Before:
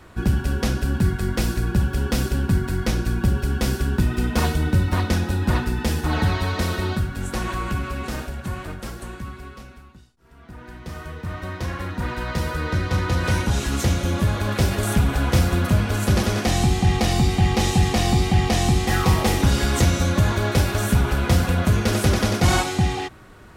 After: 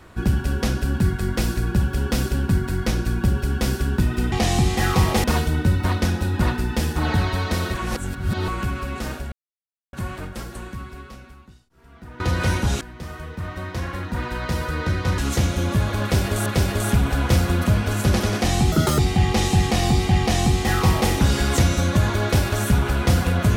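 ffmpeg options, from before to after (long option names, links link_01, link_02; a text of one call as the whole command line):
ffmpeg -i in.wav -filter_complex "[0:a]asplit=12[link_01][link_02][link_03][link_04][link_05][link_06][link_07][link_08][link_09][link_10][link_11][link_12];[link_01]atrim=end=4.322[link_13];[link_02]atrim=start=18.418:end=19.342[link_14];[link_03]atrim=start=4.318:end=6.822[link_15];[link_04]atrim=start=6.818:end=7.562,asetpts=PTS-STARTPTS,areverse[link_16];[link_05]atrim=start=7.558:end=8.4,asetpts=PTS-STARTPTS,afade=type=out:start_time=0.838:duration=0.004:curve=hsin,apad=pad_dur=0.61[link_17];[link_06]atrim=start=8.4:end=10.672,asetpts=PTS-STARTPTS,afade=type=in:duration=0.004:curve=hsin[link_18];[link_07]atrim=start=13.038:end=13.652[link_19];[link_08]atrim=start=10.668:end=13.042[link_20];[link_09]atrim=start=13.648:end=14.932[link_21];[link_10]atrim=start=14.488:end=16.754[link_22];[link_11]atrim=start=16.75:end=17.21,asetpts=PTS-STARTPTS,asetrate=76293,aresample=44100,atrim=end_sample=11726,asetpts=PTS-STARTPTS[link_23];[link_12]atrim=start=17.206[link_24];[link_13][link_14]acrossfade=duration=0.004:curve1=hsin:curve2=hsin[link_25];[link_25][link_15]acrossfade=duration=0.004:curve1=hsin:curve2=hsin[link_26];[link_26][link_16]acrossfade=duration=0.004:curve1=hsin:curve2=hsin[link_27];[link_17][link_18]concat=n=2:v=0:a=1[link_28];[link_27][link_28]acrossfade=duration=0.004:curve1=hsin:curve2=hsin[link_29];[link_29][link_19]acrossfade=duration=0.004:curve1=hsin:curve2=hsin[link_30];[link_30][link_20]acrossfade=duration=0.004:curve1=hsin:curve2=hsin[link_31];[link_31][link_21]acrossfade=duration=0.004:curve1=hsin:curve2=hsin[link_32];[link_32][link_22]acrossfade=duration=0.004:curve1=hsin:curve2=hsin[link_33];[link_33][link_23]acrossfade=duration=0.004:curve1=hsin:curve2=hsin[link_34];[link_34][link_24]acrossfade=duration=0.004:curve1=hsin:curve2=hsin" out.wav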